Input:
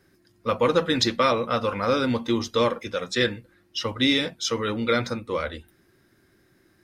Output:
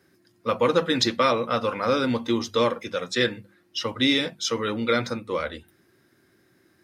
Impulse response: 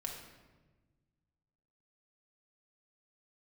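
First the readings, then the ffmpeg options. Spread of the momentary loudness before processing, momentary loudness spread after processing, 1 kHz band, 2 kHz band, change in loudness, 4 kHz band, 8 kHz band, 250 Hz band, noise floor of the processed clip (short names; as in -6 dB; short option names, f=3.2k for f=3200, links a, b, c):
9 LU, 9 LU, 0.0 dB, 0.0 dB, 0.0 dB, 0.0 dB, 0.0 dB, 0.0 dB, -64 dBFS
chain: -af "highpass=96,bandreject=f=50:t=h:w=6,bandreject=f=100:t=h:w=6,bandreject=f=150:t=h:w=6,bandreject=f=200:t=h:w=6"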